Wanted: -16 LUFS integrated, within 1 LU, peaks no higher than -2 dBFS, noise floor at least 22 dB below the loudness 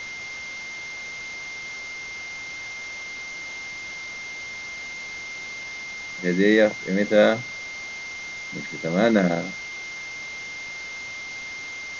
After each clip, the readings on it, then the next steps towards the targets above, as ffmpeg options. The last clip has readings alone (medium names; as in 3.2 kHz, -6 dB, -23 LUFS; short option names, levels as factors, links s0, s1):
steady tone 2.1 kHz; tone level -33 dBFS; noise floor -35 dBFS; noise floor target -49 dBFS; loudness -27.0 LUFS; peak level -5.0 dBFS; loudness target -16.0 LUFS
-> -af "bandreject=f=2100:w=30"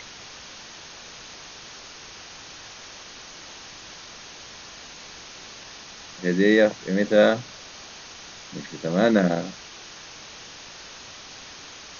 steady tone not found; noise floor -43 dBFS; noise floor target -44 dBFS
-> -af "afftdn=nr=6:nf=-43"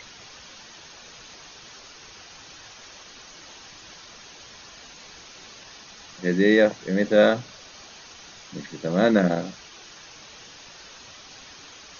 noise floor -46 dBFS; loudness -21.5 LUFS; peak level -5.0 dBFS; loudness target -16.0 LUFS
-> -af "volume=1.88,alimiter=limit=0.794:level=0:latency=1"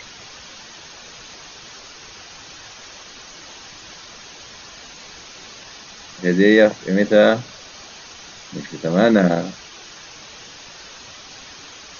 loudness -16.5 LUFS; peak level -2.0 dBFS; noise floor -41 dBFS